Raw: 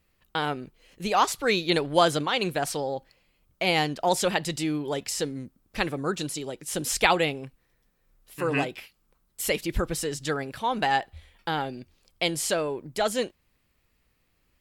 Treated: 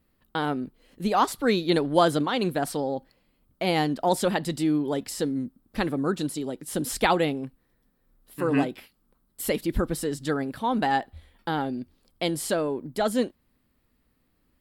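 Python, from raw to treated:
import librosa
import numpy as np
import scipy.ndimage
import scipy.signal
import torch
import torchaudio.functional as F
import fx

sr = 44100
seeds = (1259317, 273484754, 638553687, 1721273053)

y = fx.graphic_eq_15(x, sr, hz=(250, 2500, 6300), db=(9, -7, -8))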